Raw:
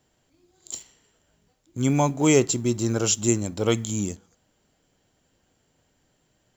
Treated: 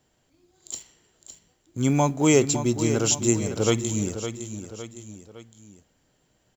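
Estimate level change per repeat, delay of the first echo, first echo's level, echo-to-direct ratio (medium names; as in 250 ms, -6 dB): -6.5 dB, 560 ms, -10.0 dB, -9.0 dB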